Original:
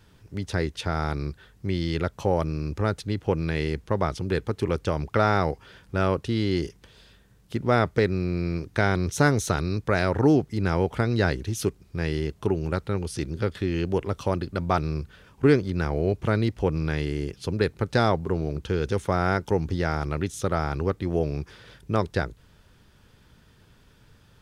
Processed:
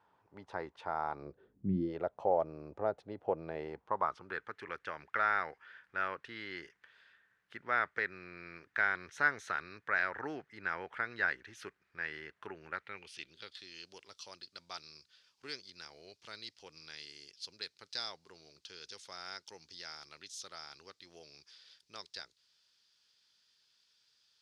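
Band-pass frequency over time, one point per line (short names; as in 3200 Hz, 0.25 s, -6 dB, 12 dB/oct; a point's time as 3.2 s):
band-pass, Q 3.1
1.13 s 900 Hz
1.73 s 170 Hz
1.95 s 680 Hz
3.56 s 680 Hz
4.56 s 1700 Hz
12.71 s 1700 Hz
13.65 s 4800 Hz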